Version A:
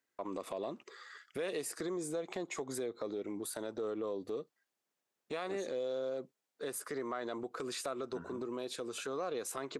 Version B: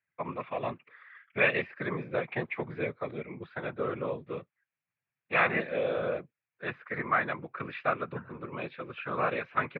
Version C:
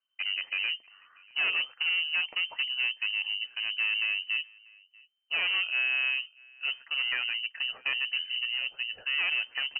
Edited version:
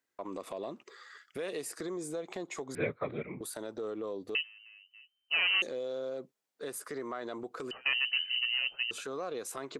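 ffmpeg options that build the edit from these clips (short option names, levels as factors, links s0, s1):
-filter_complex "[2:a]asplit=2[s0][s1];[0:a]asplit=4[s2][s3][s4][s5];[s2]atrim=end=2.752[s6];[1:a]atrim=start=2.748:end=3.412[s7];[s3]atrim=start=3.408:end=4.352[s8];[s0]atrim=start=4.348:end=5.622[s9];[s4]atrim=start=5.618:end=7.712[s10];[s1]atrim=start=7.708:end=8.912[s11];[s5]atrim=start=8.908[s12];[s6][s7]acrossfade=d=0.004:c1=hsin:c2=hsin[s13];[s13][s8]acrossfade=d=0.004:c1=hsin:c2=hsin[s14];[s14][s9]acrossfade=d=0.004:c1=hsin:c2=hsin[s15];[s15][s10]acrossfade=d=0.004:c1=hsin:c2=hsin[s16];[s16][s11]acrossfade=d=0.004:c1=hsin:c2=hsin[s17];[s17][s12]acrossfade=d=0.004:c1=hsin:c2=hsin"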